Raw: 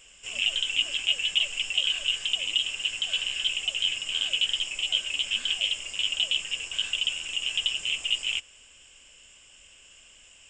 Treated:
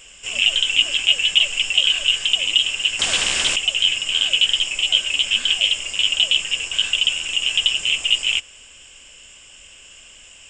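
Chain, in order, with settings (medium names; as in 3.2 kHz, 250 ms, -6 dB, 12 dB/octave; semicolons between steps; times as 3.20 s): 2.99–3.56 s: spectrum-flattening compressor 2:1; trim +9 dB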